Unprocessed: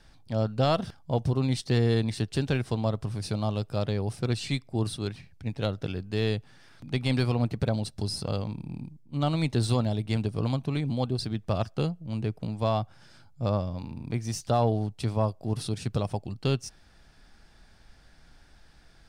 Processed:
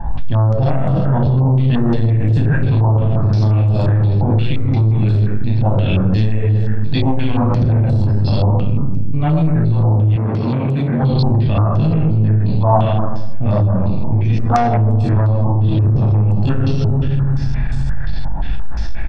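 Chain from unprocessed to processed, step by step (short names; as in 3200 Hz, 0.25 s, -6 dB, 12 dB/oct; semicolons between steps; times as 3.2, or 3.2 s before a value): tilt -2.5 dB/oct; reverb RT60 1.3 s, pre-delay 34 ms, DRR 2.5 dB; chorus 0.42 Hz, delay 19 ms, depth 3 ms; 15.44–16.07 low shelf 480 Hz +4 dB; treble ducked by the level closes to 1500 Hz, closed at -11 dBFS; 14.29–14.78 comb 4.1 ms, depth 60%; loudspeakers at several distances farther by 13 m -6 dB, 55 m -8 dB; compressor 10:1, threshold -26 dBFS, peak gain reduction 19 dB; soft clip -27 dBFS, distortion -15 dB; 10.16–11.03 HPF 270 Hz 6 dB/oct; maximiser +32.5 dB; stepped low-pass 5.7 Hz 900–7700 Hz; gain -8.5 dB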